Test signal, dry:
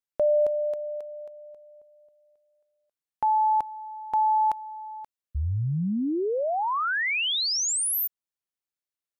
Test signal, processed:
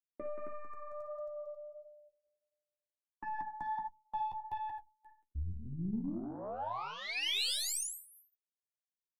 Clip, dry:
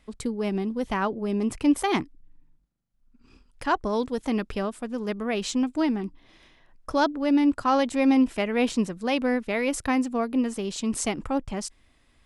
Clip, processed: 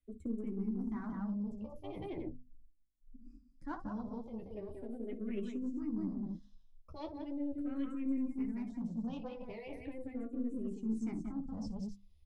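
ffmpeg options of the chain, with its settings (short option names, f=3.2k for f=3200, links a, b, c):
-filter_complex "[0:a]lowshelf=f=420:t=q:w=1.5:g=9,asplit=2[a][b];[b]aecho=0:1:58.31|180.8|268.2:0.316|0.562|0.251[c];[a][c]amix=inputs=2:normalize=0,acrossover=split=180|4500[d][e][f];[d]acompressor=threshold=-24dB:ratio=4[g];[e]acompressor=threshold=-19dB:ratio=4[h];[f]acompressor=threshold=-48dB:ratio=4[i];[g][h][i]amix=inputs=3:normalize=0,afftdn=nr=22:nf=-33,bandreject=f=50:t=h:w=6,bandreject=f=100:t=h:w=6,bandreject=f=150:t=h:w=6,bandreject=f=200:t=h:w=6,bandreject=f=250:t=h:w=6,areverse,acompressor=threshold=-32dB:ratio=8:attack=5.7:release=855:knee=6:detection=peak,areverse,aeval=exprs='(tanh(31.6*val(0)+0.6)-tanh(0.6))/31.6':c=same,flanger=delay=9.5:depth=3.7:regen=-30:speed=1.5:shape=sinusoidal,bass=f=250:g=1,treble=f=4k:g=13,asplit=2[j][k];[k]afreqshift=-0.39[l];[j][l]amix=inputs=2:normalize=1,volume=5.5dB"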